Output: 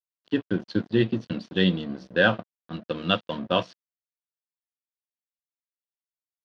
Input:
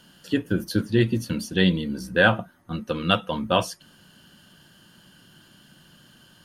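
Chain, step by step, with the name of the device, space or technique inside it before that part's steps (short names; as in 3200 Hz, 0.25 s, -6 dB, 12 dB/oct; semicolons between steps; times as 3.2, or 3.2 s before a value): blown loudspeaker (crossover distortion -36 dBFS; speaker cabinet 130–4400 Hz, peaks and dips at 840 Hz -6 dB, 1300 Hz -3 dB, 2200 Hz -6 dB)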